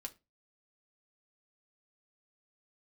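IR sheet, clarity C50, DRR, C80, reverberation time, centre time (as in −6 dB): 20.0 dB, 3.0 dB, 28.0 dB, 0.25 s, 5 ms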